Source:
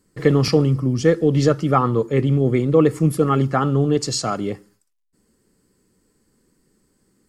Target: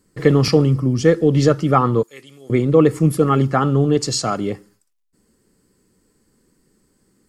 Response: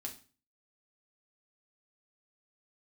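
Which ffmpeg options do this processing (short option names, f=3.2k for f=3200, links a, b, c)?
-filter_complex "[0:a]asettb=1/sr,asplit=3[a][b][c];[a]atrim=end=2.034[d];[b]atrim=start=2.03:end=2.5,asetpts=PTS-STARTPTS,afade=t=in:d=0.004:c=qsin,afade=t=out:st=0.466:d=0.004:c=qsin,aderivative[e];[c]atrim=start=2.496[f];[d][e]acrossfade=d=0.004:c1=hsin:c2=qsin[g];[g][f]acrossfade=d=0.004:c1=qsin:c2=hsin,volume=2dB"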